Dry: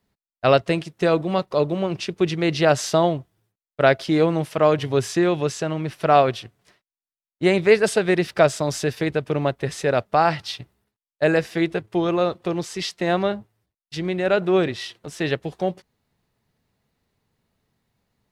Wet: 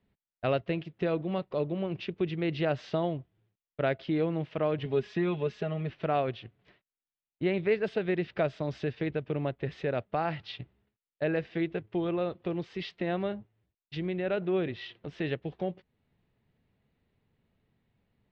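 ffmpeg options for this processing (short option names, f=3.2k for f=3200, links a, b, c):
-filter_complex "[0:a]asettb=1/sr,asplit=3[a][b][c];[a]atrim=end=4.854[d];[b]atrim=start=4.85:end=5.9,asetpts=PTS-STARTPTS,afade=t=in:d=0.004:c=qsin,afade=t=out:st=1.046:d=0.004:c=qsin,aecho=1:1:4.8:0.65,atrim=end_sample=46305[e];[c]atrim=start=5.896[f];[d][e]acrossfade=d=0.004:c1=hsin:c2=qsin[g];[g][f]acrossfade=d=0.004:c1=qsin:c2=hsin,lowpass=f=3.2k:w=0.5412,lowpass=f=3.2k:w=1.3066,equalizer=f=1.1k:w=0.77:g=-6.5,acompressor=threshold=-41dB:ratio=1.5"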